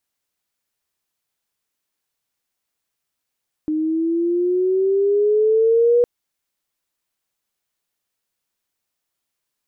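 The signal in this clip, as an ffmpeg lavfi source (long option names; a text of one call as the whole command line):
ffmpeg -f lavfi -i "aevalsrc='pow(10,(-11+7*(t/2.36-1))/20)*sin(2*PI*306*2.36/(8*log(2)/12)*(exp(8*log(2)/12*t/2.36)-1))':duration=2.36:sample_rate=44100" out.wav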